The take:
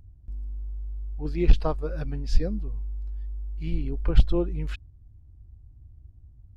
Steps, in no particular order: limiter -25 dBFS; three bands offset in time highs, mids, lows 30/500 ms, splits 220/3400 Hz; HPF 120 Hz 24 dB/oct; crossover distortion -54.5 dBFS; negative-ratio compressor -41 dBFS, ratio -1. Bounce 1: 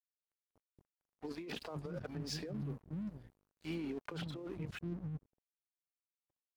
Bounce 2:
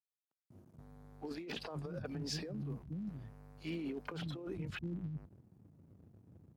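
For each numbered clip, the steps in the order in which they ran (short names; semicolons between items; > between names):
three bands offset in time > limiter > HPF > crossover distortion > negative-ratio compressor; three bands offset in time > crossover distortion > limiter > HPF > negative-ratio compressor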